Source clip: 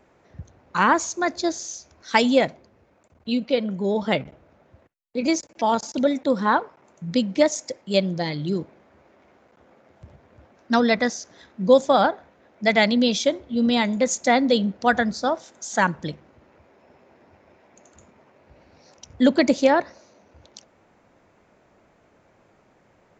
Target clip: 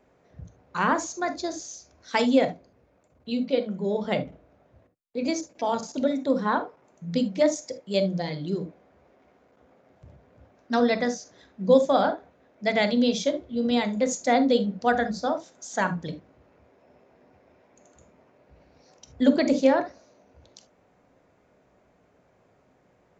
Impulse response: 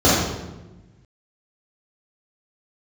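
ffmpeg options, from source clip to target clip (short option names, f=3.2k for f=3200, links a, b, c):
-filter_complex "[0:a]asplit=2[a][b];[1:a]atrim=start_sample=2205,atrim=end_sample=3528[c];[b][c]afir=irnorm=-1:irlink=0,volume=-29.5dB[d];[a][d]amix=inputs=2:normalize=0,volume=-6.5dB"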